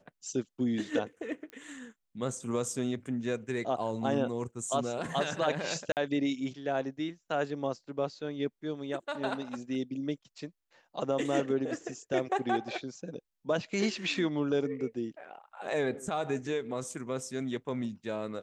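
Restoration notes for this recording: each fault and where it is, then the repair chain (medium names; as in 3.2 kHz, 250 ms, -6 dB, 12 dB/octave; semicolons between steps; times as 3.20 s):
1.50 s: pop -30 dBFS
5.92–5.97 s: dropout 48 ms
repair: de-click; interpolate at 5.92 s, 48 ms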